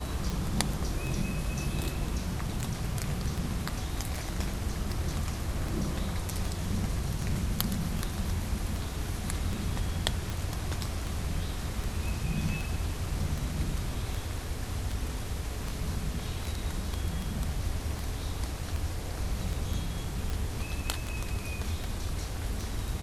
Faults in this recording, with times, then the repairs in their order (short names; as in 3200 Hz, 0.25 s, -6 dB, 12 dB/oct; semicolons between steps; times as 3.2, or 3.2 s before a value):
tick 78 rpm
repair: de-click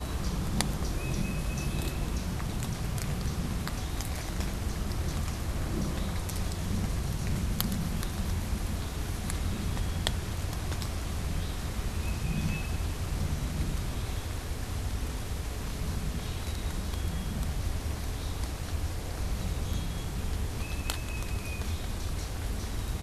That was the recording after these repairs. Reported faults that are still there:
none